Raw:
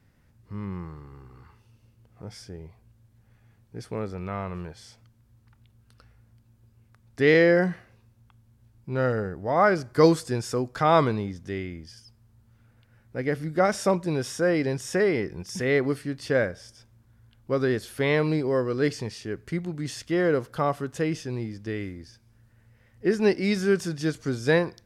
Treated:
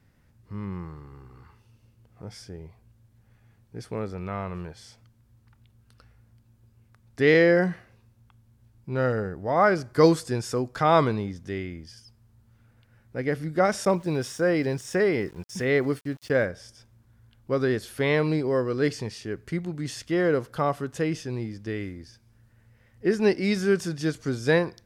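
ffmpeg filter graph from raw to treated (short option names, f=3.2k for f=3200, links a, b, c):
-filter_complex "[0:a]asettb=1/sr,asplit=3[a][b][c];[a]atrim=end=13.854[d];[b]atrim=start=13.85:end=16.45,asetpts=PTS-STARTPTS,afade=t=in:d=0.004:c=qsin,afade=t=out:st=2.596:d=0.004:c=qsin,agate=range=-33dB:threshold=-35dB:ratio=3:release=100:detection=peak,aeval=exprs='val(0)*gte(abs(val(0)),0.00376)':c=same[e];[c]atrim=start=16.446[f];[d][e]acrossfade=d=0.004:c1=hsin:c2=qsin[g];[g][f]acrossfade=d=0.004:c1=qsin:c2=hsin"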